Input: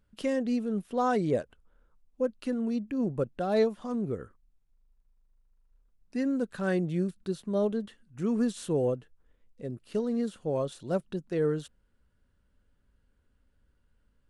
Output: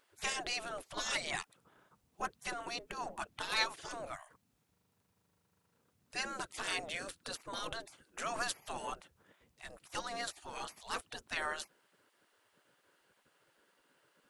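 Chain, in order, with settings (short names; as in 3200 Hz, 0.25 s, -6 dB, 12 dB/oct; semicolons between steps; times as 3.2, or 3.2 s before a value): spectral gate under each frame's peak -25 dB weak; gain +12 dB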